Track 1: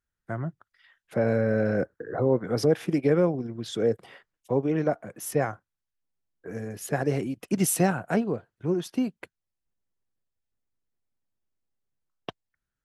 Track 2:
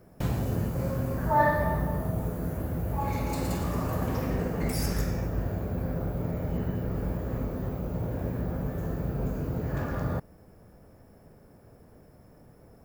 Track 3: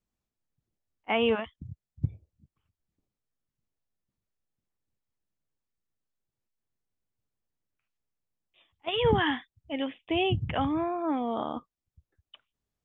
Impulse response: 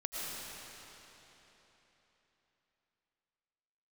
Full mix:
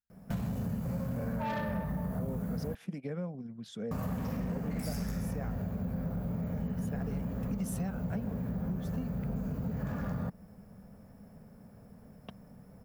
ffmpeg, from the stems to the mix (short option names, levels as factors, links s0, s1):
-filter_complex "[0:a]volume=0.224[s0];[1:a]asoftclip=type=tanh:threshold=0.0668,adelay=100,volume=0.75,asplit=3[s1][s2][s3];[s1]atrim=end=2.75,asetpts=PTS-STARTPTS,afade=t=out:st=2.746:d=0.004:c=hsin[s4];[s2]atrim=start=2.75:end=3.91,asetpts=PTS-STARTPTS,volume=0[s5];[s3]atrim=start=3.91,asetpts=PTS-STARTPTS,afade=t=in:d=0.004:c=hsin[s6];[s4][s5][s6]concat=n=3:v=0:a=1[s7];[s0][s7]amix=inputs=2:normalize=0,equalizer=f=200:t=o:w=0.62:g=11.5,acompressor=threshold=0.0282:ratio=4,volume=1,equalizer=f=340:t=o:w=0.34:g=-13"